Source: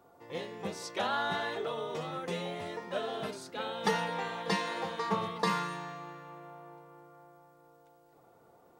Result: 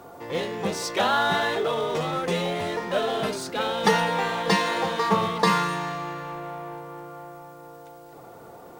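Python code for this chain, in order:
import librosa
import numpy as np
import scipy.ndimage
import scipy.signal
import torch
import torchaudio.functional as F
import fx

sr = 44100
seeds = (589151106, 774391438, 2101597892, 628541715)

y = fx.law_mismatch(x, sr, coded='mu')
y = y * 10.0 ** (8.5 / 20.0)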